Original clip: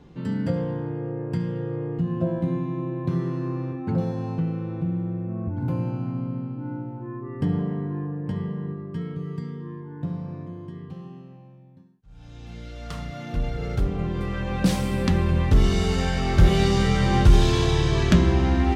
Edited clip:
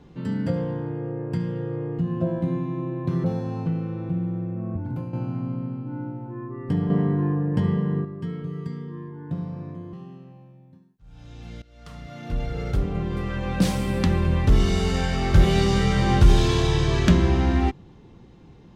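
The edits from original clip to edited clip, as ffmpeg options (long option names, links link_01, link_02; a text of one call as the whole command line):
ffmpeg -i in.wav -filter_complex "[0:a]asplit=7[link_01][link_02][link_03][link_04][link_05][link_06][link_07];[link_01]atrim=end=3.242[link_08];[link_02]atrim=start=3.958:end=5.85,asetpts=PTS-STARTPTS,afade=type=out:start_time=1.502:duration=0.39:silence=0.334965[link_09];[link_03]atrim=start=5.85:end=7.622,asetpts=PTS-STARTPTS,afade=type=in:duration=0.004:curve=hsin:silence=0.334965[link_10];[link_04]atrim=start=7.618:end=8.772,asetpts=PTS-STARTPTS,volume=6.5dB[link_11];[link_05]atrim=start=8.768:end=10.652[link_12];[link_06]atrim=start=10.968:end=12.66,asetpts=PTS-STARTPTS,afade=type=out:start_time=1.688:duration=0.004:curve=hsin:silence=0.1[link_13];[link_07]atrim=start=12.66,asetpts=PTS-STARTPTS,afade=type=in:duration=0.85:silence=0.1[link_14];[link_09][link_10]concat=n=2:v=0:a=1[link_15];[link_08][link_15]acrossfade=duration=0.004:curve1=hsin:curve2=hsin[link_16];[link_16][link_11]acrossfade=duration=0.004:curve1=hsin:curve2=hsin[link_17];[link_17][link_12]acrossfade=duration=0.004:curve1=hsin:curve2=hsin[link_18];[link_13][link_14]concat=n=2:v=0:a=1[link_19];[link_18][link_19]acrossfade=duration=0.004:curve1=hsin:curve2=hsin" out.wav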